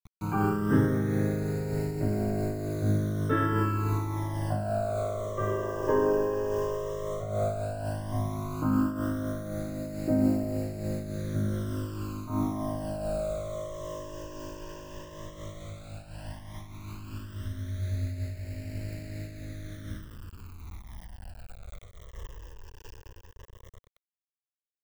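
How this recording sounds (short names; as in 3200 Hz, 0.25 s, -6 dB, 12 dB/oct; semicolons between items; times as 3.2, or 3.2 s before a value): a quantiser's noise floor 8-bit, dither none; phasing stages 12, 0.12 Hz, lowest notch 220–1100 Hz; noise-modulated level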